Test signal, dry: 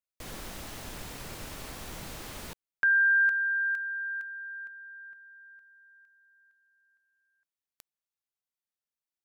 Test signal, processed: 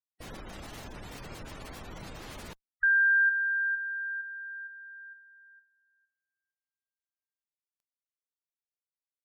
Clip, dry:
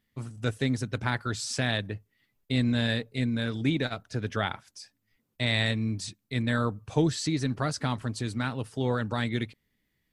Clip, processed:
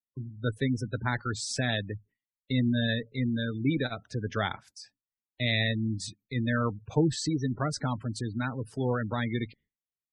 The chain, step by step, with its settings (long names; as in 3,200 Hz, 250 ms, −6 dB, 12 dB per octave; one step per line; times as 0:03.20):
downward expander −49 dBFS, range −33 dB
harmonic generator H 3 −35 dB, 4 −37 dB, 6 −32 dB, 8 −27 dB, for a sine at −11 dBFS
gate on every frequency bin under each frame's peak −20 dB strong